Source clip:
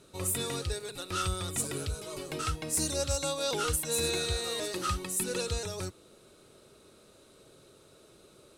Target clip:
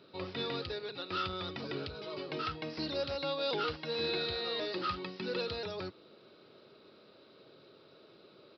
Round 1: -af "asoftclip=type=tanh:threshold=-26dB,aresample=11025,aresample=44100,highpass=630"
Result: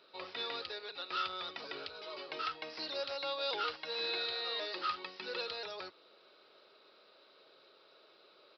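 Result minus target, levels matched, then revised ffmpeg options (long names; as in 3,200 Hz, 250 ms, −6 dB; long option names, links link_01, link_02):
125 Hz band −19.5 dB
-af "asoftclip=type=tanh:threshold=-26dB,aresample=11025,aresample=44100,highpass=160"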